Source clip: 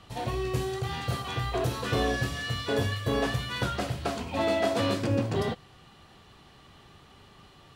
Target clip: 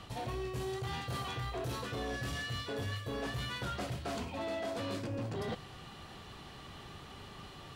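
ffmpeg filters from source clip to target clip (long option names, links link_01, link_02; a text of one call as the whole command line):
ffmpeg -i in.wav -af "areverse,acompressor=threshold=-37dB:ratio=10,areverse,asoftclip=type=tanh:threshold=-36dB,volume=4.5dB" out.wav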